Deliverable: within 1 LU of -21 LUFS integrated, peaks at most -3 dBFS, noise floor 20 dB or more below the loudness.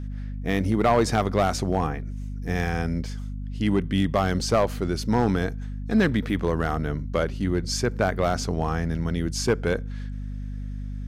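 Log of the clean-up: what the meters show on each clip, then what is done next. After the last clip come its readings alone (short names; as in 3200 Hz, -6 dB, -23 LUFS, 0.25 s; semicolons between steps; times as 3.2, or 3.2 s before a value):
clipped 0.6%; flat tops at -13.0 dBFS; hum 50 Hz; harmonics up to 250 Hz; hum level -29 dBFS; loudness -25.5 LUFS; peak -13.0 dBFS; loudness target -21.0 LUFS
-> clip repair -13 dBFS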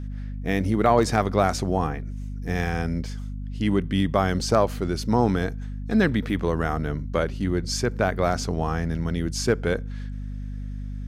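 clipped 0.0%; hum 50 Hz; harmonics up to 250 Hz; hum level -29 dBFS
-> de-hum 50 Hz, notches 5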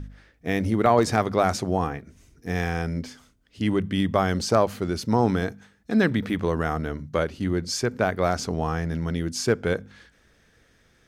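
hum none; loudness -25.0 LUFS; peak -5.5 dBFS; loudness target -21.0 LUFS
-> gain +4 dB; limiter -3 dBFS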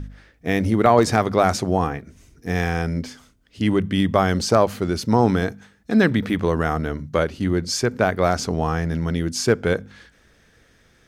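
loudness -21.0 LUFS; peak -3.0 dBFS; noise floor -57 dBFS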